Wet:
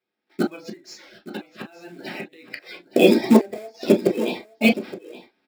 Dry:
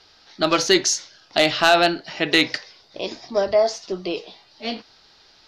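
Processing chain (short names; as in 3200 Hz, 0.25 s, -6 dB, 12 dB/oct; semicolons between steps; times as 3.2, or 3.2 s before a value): bin magnitudes rounded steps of 30 dB; gate -46 dBFS, range -30 dB; graphic EQ 250/500/1000/8000 Hz +11/+4/-4/-8 dB; flipped gate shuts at -11 dBFS, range -35 dB; 0.64–2.48 compressor 16:1, threshold -46 dBFS, peak gain reduction 25 dB; limiter -17.5 dBFS, peak gain reduction 7.5 dB; tone controls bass -8 dB, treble -9 dB; short-mantissa float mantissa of 2-bit; AGC gain up to 15.5 dB; echo 0.869 s -15.5 dB; reverb, pre-delay 3 ms, DRR 1 dB; gain -2 dB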